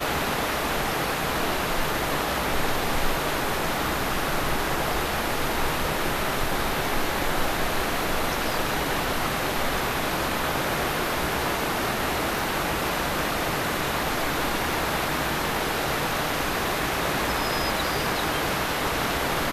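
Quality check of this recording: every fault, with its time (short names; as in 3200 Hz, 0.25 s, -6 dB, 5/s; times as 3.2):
12.39 pop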